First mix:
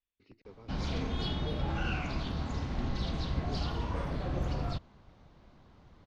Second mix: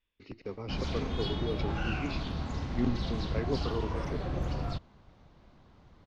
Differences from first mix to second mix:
speech +11.0 dB
reverb: on, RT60 0.95 s

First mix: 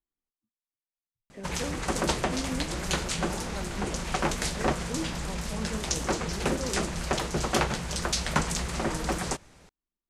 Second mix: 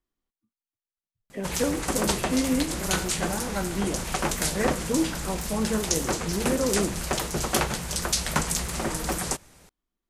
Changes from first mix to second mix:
speech +9.5 dB
master: remove high-frequency loss of the air 60 metres

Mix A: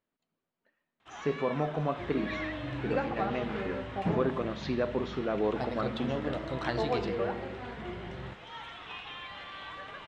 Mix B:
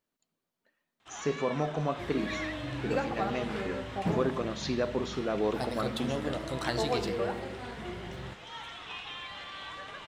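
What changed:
first sound: add low-pass filter 5,500 Hz 12 dB per octave
master: remove low-pass filter 3,100 Hz 12 dB per octave

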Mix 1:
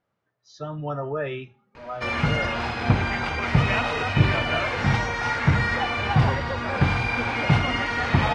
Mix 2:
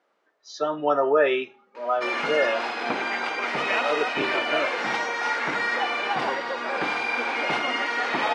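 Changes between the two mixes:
speech +9.5 dB
master: add high-pass filter 300 Hz 24 dB per octave

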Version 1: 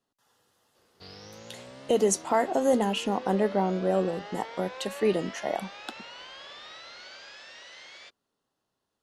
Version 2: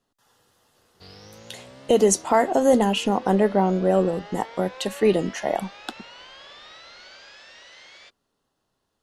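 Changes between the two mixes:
speech +5.5 dB
master: add low-shelf EQ 60 Hz +11.5 dB

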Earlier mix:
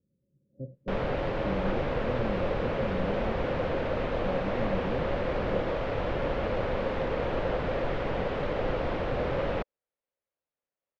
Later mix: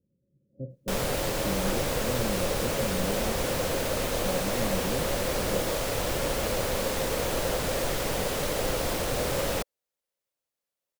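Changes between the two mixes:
speech: send +11.5 dB
master: remove Bessel low-pass filter 2,000 Hz, order 4

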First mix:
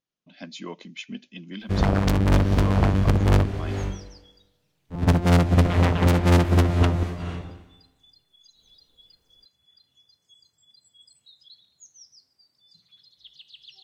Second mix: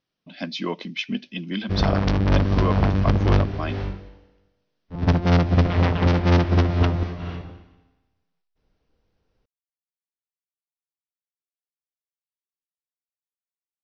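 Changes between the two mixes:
speech +9.0 dB
second sound: muted
master: add Butterworth low-pass 5,800 Hz 72 dB per octave

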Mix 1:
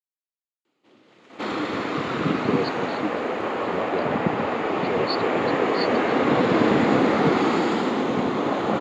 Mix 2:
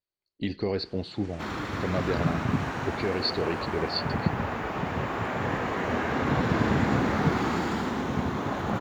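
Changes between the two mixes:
speech: entry −1.85 s
second sound −7.5 dB
master: remove loudspeaker in its box 240–9,300 Hz, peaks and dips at 310 Hz +3 dB, 490 Hz +4 dB, 950 Hz −3 dB, 1,600 Hz −6 dB, 5,700 Hz −9 dB, 8,600 Hz −10 dB

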